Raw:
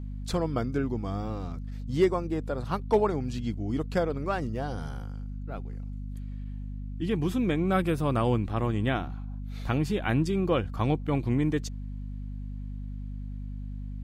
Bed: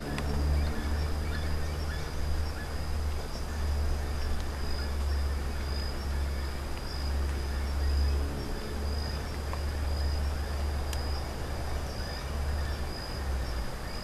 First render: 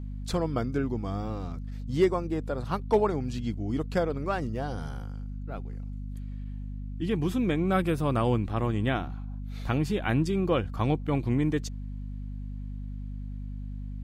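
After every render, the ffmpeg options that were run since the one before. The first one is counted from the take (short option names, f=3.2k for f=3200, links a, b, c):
-af anull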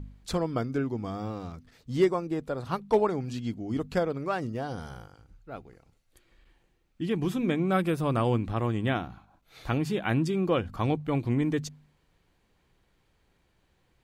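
-af "bandreject=f=50:t=h:w=4,bandreject=f=100:t=h:w=4,bandreject=f=150:t=h:w=4,bandreject=f=200:t=h:w=4,bandreject=f=250:t=h:w=4"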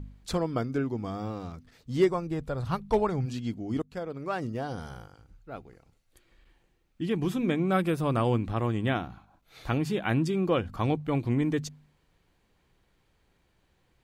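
-filter_complex "[0:a]asplit=3[a][b][c];[a]afade=t=out:st=2.08:d=0.02[d];[b]asubboost=boost=6:cutoff=130,afade=t=in:st=2.08:d=0.02,afade=t=out:st=3.25:d=0.02[e];[c]afade=t=in:st=3.25:d=0.02[f];[d][e][f]amix=inputs=3:normalize=0,asplit=2[g][h];[g]atrim=end=3.82,asetpts=PTS-STARTPTS,afade=t=out:st=3.816:d=0.004:c=hsin:silence=0.105925[i];[h]atrim=start=3.82,asetpts=PTS-STARTPTS,afade=t=in:d=0.64:silence=0.105925[j];[i][j]concat=n=2:v=0:a=1"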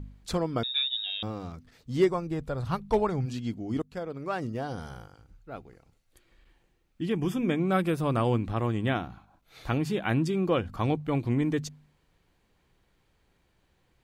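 -filter_complex "[0:a]asettb=1/sr,asplit=3[a][b][c];[a]atrim=end=0.634[d];[b]atrim=start=0.63:end=1.23,asetpts=PTS-STARTPTS,afade=t=in:d=0.004:c=qsin,afade=t=out:st=0.596:d=0.004:c=qsin,lowpass=f=3.3k:t=q:w=0.5098,lowpass=f=3.3k:t=q:w=0.6013,lowpass=f=3.3k:t=q:w=0.9,lowpass=f=3.3k:t=q:w=2.563,afreqshift=-3900[e];[c]atrim=start=1.226[f];[d][e]acrossfade=d=0.004:c1=hsin:c2=qsin[g];[g][f]acrossfade=d=0.004:c1=qsin:c2=hsin,asettb=1/sr,asplit=3[h][i][j];[h]atrim=end=7.124[k];[i]atrim=start=7.12:end=7.6,asetpts=PTS-STARTPTS,afade=t=in:d=0.004:c=qsin,afade=t=out:st=0.476:d=0.004:c=qsin,asuperstop=centerf=4100:order=20:qfactor=4.4[l];[j]atrim=start=7.596[m];[k][l]acrossfade=d=0.004:c1=hsin:c2=qsin[n];[n][m]acrossfade=d=0.004:c1=qsin:c2=hsin"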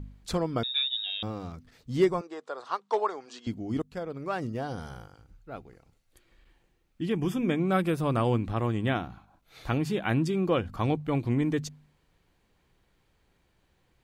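-filter_complex "[0:a]asettb=1/sr,asplit=3[a][b][c];[a]atrim=end=2.214[d];[b]atrim=start=2.21:end=3.47,asetpts=PTS-STARTPTS,afade=t=in:d=0.004:c=qsin,afade=t=out:st=1.256:d=0.004:c=qsin,highpass=f=410:w=0.5412,highpass=f=410:w=1.3066,equalizer=f=560:t=q:w=4:g=-4,equalizer=f=1.1k:t=q:w=4:g=5,equalizer=f=2.4k:t=q:w=4:g=-6,lowpass=f=7.9k:w=0.5412,lowpass=f=7.9k:w=1.3066[e];[c]atrim=start=3.466[f];[d][e]acrossfade=d=0.004:c1=hsin:c2=qsin[g];[g][f]acrossfade=d=0.004:c1=qsin:c2=hsin"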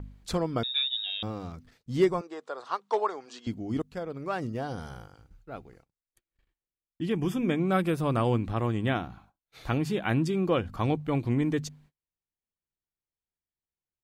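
-af "agate=range=-32dB:threshold=-56dB:ratio=16:detection=peak"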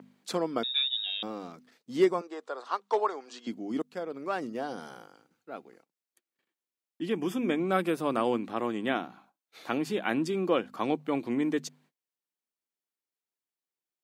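-af "highpass=f=220:w=0.5412,highpass=f=220:w=1.3066"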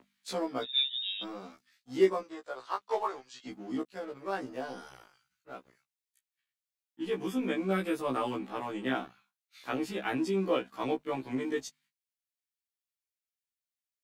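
-filter_complex "[0:a]acrossover=split=120|1400|2200[a][b][c][d];[b]aeval=exprs='sgn(val(0))*max(abs(val(0))-0.00335,0)':c=same[e];[a][e][c][d]amix=inputs=4:normalize=0,afftfilt=real='re*1.73*eq(mod(b,3),0)':imag='im*1.73*eq(mod(b,3),0)':win_size=2048:overlap=0.75"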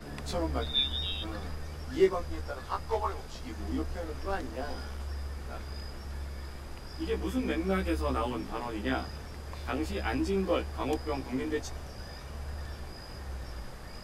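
-filter_complex "[1:a]volume=-7.5dB[a];[0:a][a]amix=inputs=2:normalize=0"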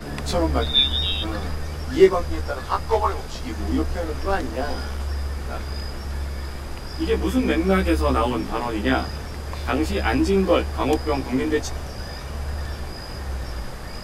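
-af "volume=10.5dB"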